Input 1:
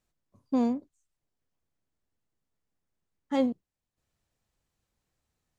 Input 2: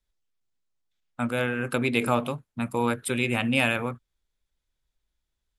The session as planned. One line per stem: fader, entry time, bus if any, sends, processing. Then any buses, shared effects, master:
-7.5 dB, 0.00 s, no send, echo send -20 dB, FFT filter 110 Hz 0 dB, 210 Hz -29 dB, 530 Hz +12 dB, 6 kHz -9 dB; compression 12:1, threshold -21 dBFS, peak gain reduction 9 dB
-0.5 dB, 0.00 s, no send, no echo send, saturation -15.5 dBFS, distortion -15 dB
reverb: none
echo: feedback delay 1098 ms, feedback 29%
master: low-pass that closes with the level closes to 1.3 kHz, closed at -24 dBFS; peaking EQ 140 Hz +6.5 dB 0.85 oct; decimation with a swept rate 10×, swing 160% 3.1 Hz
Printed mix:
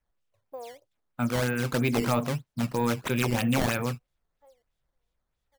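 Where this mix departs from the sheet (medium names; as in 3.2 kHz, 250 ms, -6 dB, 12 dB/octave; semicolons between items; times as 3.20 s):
stem 1 -7.5 dB -> -14.0 dB; master: missing low-pass that closes with the level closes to 1.3 kHz, closed at -24 dBFS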